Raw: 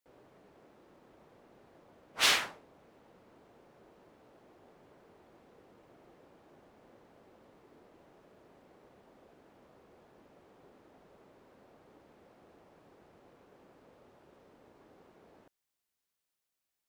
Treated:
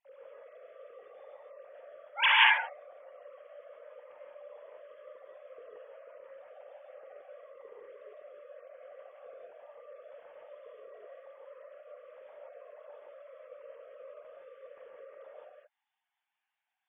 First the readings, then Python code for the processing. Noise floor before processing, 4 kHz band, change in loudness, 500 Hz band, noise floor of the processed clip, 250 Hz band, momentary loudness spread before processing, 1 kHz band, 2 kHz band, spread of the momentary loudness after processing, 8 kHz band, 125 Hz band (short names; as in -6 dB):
under -85 dBFS, +2.0 dB, +4.5 dB, +8.0 dB, under -85 dBFS, under -15 dB, 11 LU, +9.5 dB, +9.0 dB, 13 LU, under -35 dB, under -25 dB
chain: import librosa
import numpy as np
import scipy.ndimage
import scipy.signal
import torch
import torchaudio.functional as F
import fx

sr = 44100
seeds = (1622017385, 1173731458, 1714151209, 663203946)

y = fx.sine_speech(x, sr)
y = fx.low_shelf(y, sr, hz=260.0, db=10.5)
y = fx.rev_gated(y, sr, seeds[0], gate_ms=200, shape='rising', drr_db=-4.0)